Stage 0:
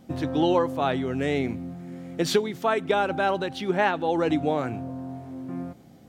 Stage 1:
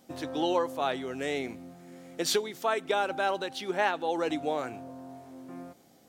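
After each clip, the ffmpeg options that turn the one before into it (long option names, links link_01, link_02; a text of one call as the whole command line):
ffmpeg -i in.wav -af "bass=frequency=250:gain=-13,treble=frequency=4000:gain=7,volume=-4dB" out.wav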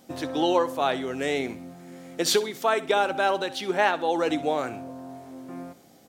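ffmpeg -i in.wav -af "aecho=1:1:64|128|192:0.141|0.0438|0.0136,volume=5dB" out.wav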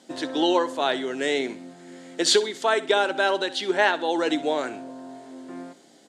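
ffmpeg -i in.wav -af "highpass=340,equalizer=frequency=510:width_type=q:width=4:gain=-6,equalizer=frequency=760:width_type=q:width=4:gain=-8,equalizer=frequency=1200:width_type=q:width=4:gain=-9,equalizer=frequency=2400:width_type=q:width=4:gain=-7,equalizer=frequency=5700:width_type=q:width=4:gain=-6,lowpass=frequency=8300:width=0.5412,lowpass=frequency=8300:width=1.3066,volume=6.5dB" out.wav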